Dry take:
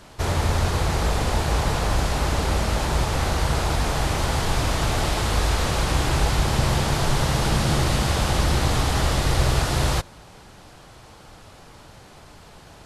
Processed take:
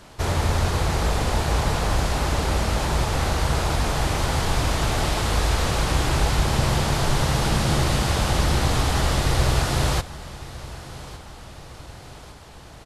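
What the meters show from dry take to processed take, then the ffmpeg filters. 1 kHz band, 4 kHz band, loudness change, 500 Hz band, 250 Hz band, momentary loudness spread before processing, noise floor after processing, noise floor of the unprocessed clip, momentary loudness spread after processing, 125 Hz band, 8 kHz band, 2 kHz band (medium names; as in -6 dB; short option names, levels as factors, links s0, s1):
0.0 dB, 0.0 dB, 0.0 dB, 0.0 dB, 0.0 dB, 2 LU, -43 dBFS, -47 dBFS, 17 LU, 0.0 dB, 0.0 dB, 0.0 dB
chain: -af "aecho=1:1:1158|2316|3474|4632|5790:0.133|0.0707|0.0375|0.0199|0.0105"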